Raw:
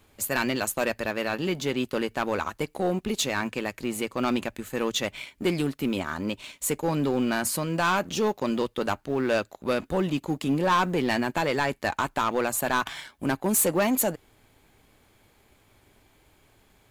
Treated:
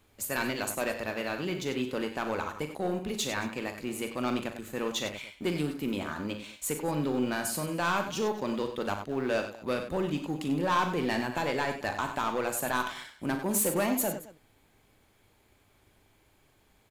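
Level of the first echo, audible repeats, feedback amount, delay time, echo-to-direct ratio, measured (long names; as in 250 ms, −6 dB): −10.0 dB, 3, repeats not evenly spaced, 40 ms, −5.5 dB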